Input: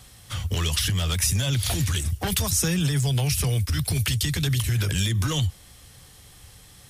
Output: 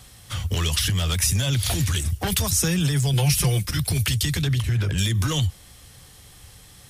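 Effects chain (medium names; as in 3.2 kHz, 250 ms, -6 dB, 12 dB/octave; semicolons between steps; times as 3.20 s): 3.13–3.77 s: comb 5.7 ms, depth 87%; 4.41–4.97 s: low-pass 3.9 kHz -> 1.6 kHz 6 dB/octave; trim +1.5 dB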